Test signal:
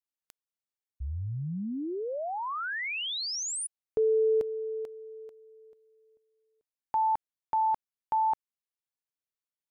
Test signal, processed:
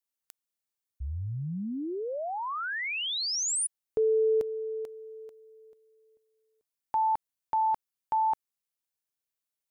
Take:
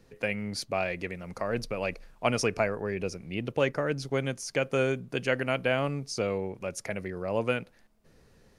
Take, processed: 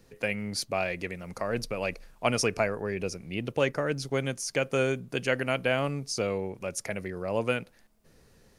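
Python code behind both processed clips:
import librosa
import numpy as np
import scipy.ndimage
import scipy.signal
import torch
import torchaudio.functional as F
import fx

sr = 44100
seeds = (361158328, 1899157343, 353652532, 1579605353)

y = fx.high_shelf(x, sr, hz=5800.0, db=7.0)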